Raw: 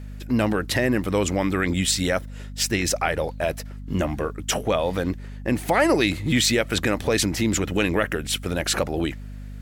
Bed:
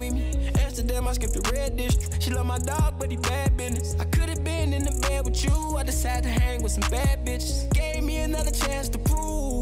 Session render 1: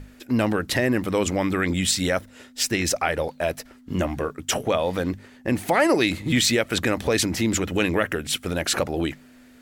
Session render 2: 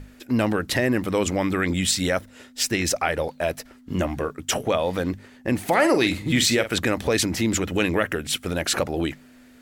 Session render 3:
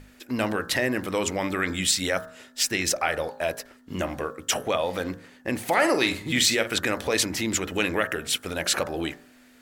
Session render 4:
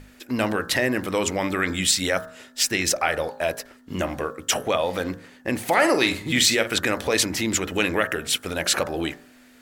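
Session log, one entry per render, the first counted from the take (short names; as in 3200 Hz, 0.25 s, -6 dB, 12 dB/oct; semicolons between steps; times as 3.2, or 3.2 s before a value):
notches 50/100/150/200 Hz
5.61–6.76 doubler 46 ms -11 dB
low shelf 360 Hz -8 dB; de-hum 58.49 Hz, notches 31
gain +2.5 dB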